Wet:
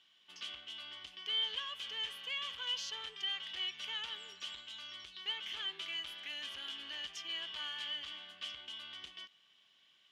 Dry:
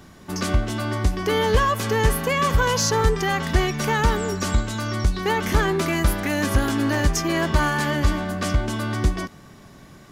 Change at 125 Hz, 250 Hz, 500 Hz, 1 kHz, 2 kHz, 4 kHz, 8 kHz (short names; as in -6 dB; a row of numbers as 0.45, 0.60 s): under -40 dB, under -40 dB, -36.0 dB, -28.5 dB, -19.5 dB, -5.0 dB, -25.0 dB